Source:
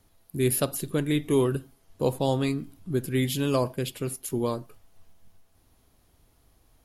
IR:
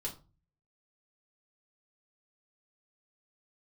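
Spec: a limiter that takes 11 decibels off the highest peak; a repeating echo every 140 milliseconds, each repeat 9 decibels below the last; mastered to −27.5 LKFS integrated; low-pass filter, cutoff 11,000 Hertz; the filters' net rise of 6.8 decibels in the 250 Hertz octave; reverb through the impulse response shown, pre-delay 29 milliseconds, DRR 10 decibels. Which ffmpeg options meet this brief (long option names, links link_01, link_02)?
-filter_complex "[0:a]lowpass=11000,equalizer=frequency=250:width_type=o:gain=8,alimiter=limit=-18.5dB:level=0:latency=1,aecho=1:1:140|280|420|560:0.355|0.124|0.0435|0.0152,asplit=2[link_01][link_02];[1:a]atrim=start_sample=2205,adelay=29[link_03];[link_02][link_03]afir=irnorm=-1:irlink=0,volume=-9.5dB[link_04];[link_01][link_04]amix=inputs=2:normalize=0"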